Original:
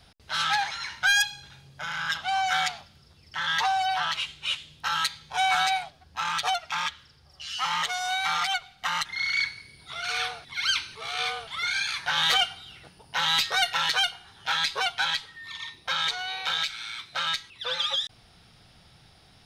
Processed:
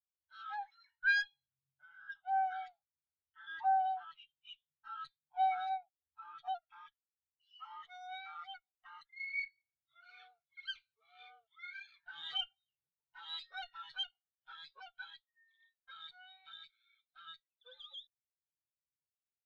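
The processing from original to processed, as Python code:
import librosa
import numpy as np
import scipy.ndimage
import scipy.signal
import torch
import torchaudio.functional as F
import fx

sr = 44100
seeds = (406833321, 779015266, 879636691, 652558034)

y = fx.diode_clip(x, sr, knee_db=-29.0)
y = fx.spectral_expand(y, sr, expansion=2.5)
y = F.gain(torch.from_numpy(y), -6.0).numpy()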